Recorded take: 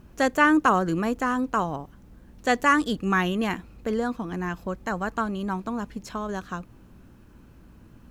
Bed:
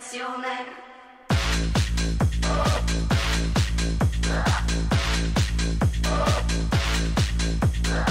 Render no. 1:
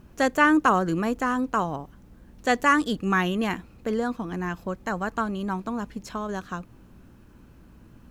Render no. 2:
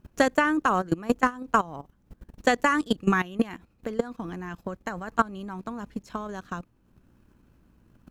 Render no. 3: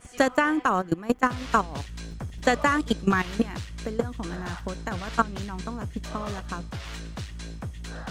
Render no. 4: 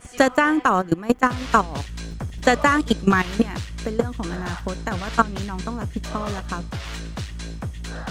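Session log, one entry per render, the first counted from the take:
hum removal 50 Hz, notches 2
output level in coarse steps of 12 dB; transient designer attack +8 dB, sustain −5 dB
mix in bed −13.5 dB
level +5 dB; brickwall limiter −2 dBFS, peak gain reduction 1.5 dB

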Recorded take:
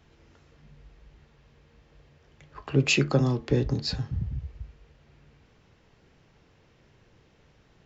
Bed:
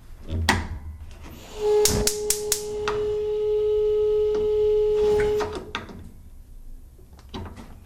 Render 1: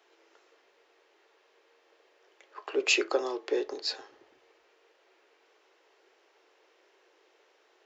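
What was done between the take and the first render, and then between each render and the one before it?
elliptic high-pass filter 360 Hz, stop band 50 dB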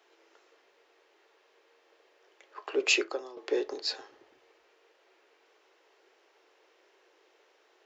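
0:02.96–0:03.37: fade out quadratic, to −14 dB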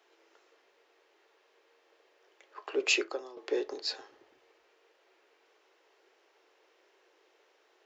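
level −2 dB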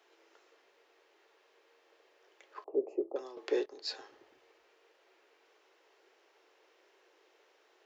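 0:02.64–0:03.16: inverse Chebyshev low-pass filter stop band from 1,400 Hz
0:03.66–0:04.06: fade in, from −18.5 dB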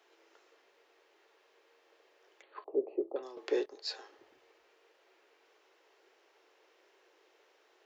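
0:02.42–0:03.23: linear-phase brick-wall low-pass 4,600 Hz
0:03.75–0:04.17: high-pass filter 470 Hz → 260 Hz 24 dB per octave

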